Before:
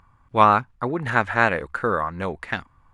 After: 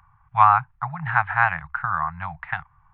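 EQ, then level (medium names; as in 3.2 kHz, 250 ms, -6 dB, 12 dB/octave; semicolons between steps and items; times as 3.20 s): Gaussian low-pass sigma 3.8 samples; Chebyshev band-stop 160–760 Hz, order 4; bass shelf 140 Hz -5.5 dB; +3.5 dB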